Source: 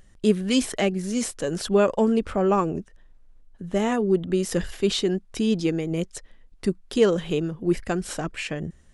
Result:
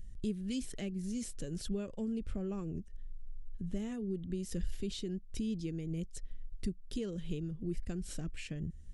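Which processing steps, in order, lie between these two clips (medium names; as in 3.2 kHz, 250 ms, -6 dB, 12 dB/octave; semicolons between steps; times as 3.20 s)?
compression 2:1, threshold -38 dBFS, peak gain reduction 13.5 dB; amplifier tone stack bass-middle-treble 10-0-1; trim +14 dB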